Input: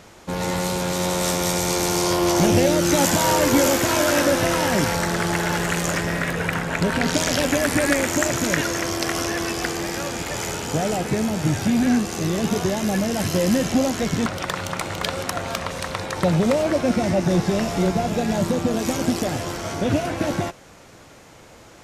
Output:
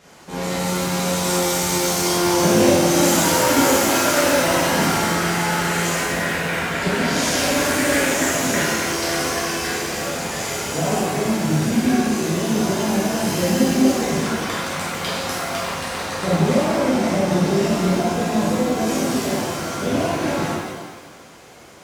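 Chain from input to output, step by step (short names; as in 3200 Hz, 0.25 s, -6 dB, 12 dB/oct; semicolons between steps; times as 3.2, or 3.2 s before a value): HPF 120 Hz 6 dB/oct; shimmer reverb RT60 1.3 s, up +7 st, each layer -8 dB, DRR -9 dB; gain -7.5 dB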